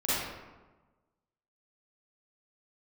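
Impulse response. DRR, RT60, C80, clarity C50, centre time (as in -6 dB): -12.0 dB, 1.2 s, -0.5 dB, -5.5 dB, 107 ms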